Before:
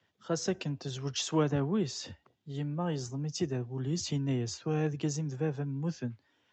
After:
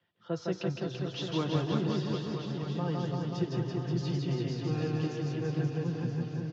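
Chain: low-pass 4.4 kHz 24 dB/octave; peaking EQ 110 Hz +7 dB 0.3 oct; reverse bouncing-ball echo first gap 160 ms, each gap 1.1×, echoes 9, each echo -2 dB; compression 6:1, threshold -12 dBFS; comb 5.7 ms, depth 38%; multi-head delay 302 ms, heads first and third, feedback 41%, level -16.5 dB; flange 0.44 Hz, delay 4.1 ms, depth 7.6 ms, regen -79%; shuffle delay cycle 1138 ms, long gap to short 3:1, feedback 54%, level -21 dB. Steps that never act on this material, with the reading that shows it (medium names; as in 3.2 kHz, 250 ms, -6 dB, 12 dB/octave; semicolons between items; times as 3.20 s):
compression, threshold -12 dBFS: peak at its input -13.0 dBFS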